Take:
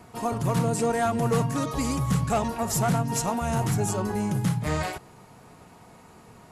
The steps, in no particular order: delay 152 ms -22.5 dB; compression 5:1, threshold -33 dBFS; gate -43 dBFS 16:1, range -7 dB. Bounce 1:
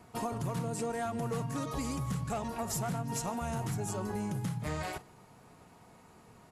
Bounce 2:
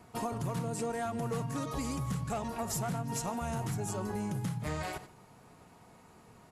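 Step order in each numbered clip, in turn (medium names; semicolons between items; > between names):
compression > delay > gate; delay > gate > compression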